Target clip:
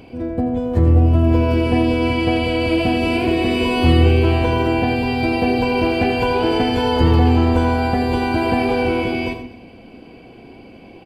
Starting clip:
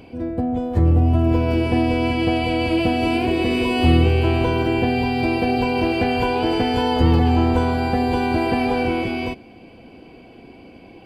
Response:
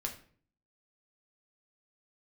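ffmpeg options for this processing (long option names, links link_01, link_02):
-filter_complex "[0:a]aecho=1:1:239:0.0708,asplit=2[link_01][link_02];[1:a]atrim=start_sample=2205,adelay=83[link_03];[link_02][link_03]afir=irnorm=-1:irlink=0,volume=-8dB[link_04];[link_01][link_04]amix=inputs=2:normalize=0,volume=1.5dB"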